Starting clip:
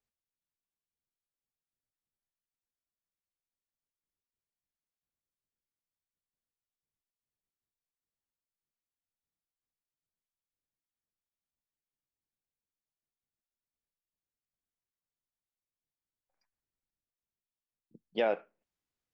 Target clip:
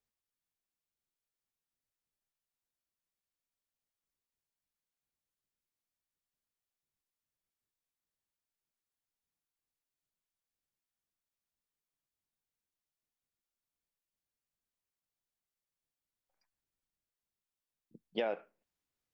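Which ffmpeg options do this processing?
-af "acompressor=threshold=0.0316:ratio=6"

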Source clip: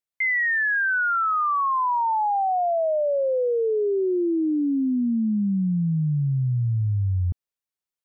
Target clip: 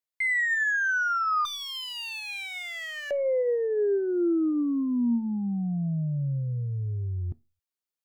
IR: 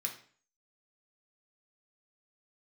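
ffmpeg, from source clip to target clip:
-filter_complex "[0:a]aeval=exprs='0.112*(cos(1*acos(clip(val(0)/0.112,-1,1)))-cos(1*PI/2))+0.00447*(cos(4*acos(clip(val(0)/0.112,-1,1)))-cos(4*PI/2))':c=same,asettb=1/sr,asplit=3[s0][s1][s2];[s0]atrim=end=1.454[s3];[s1]atrim=start=1.45:end=3.11,asetpts=PTS-STARTPTS,afade=t=in:d=0.004:c=qsin,afade=t=out:st=1.656:d=0.004:c=qsin,aeval=exprs='0.0422*(abs(mod(val(0)/0.0422+3,4)-2)-1)':c=same[s4];[s2]atrim=start=3.106[s5];[s3][s4]acrossfade=d=0.004:c1=hsin:c2=qsin[s6];[s6][s5]acrossfade=d=0.004:c1=qsin:c2=hsin,asplit=2[s7][s8];[1:a]atrim=start_sample=2205,asetrate=83790,aresample=44100,lowshelf=f=170:g=11[s9];[s8][s9]afir=irnorm=-1:irlink=0,volume=0.447[s10];[s7][s10]amix=inputs=2:normalize=0,volume=0.708"

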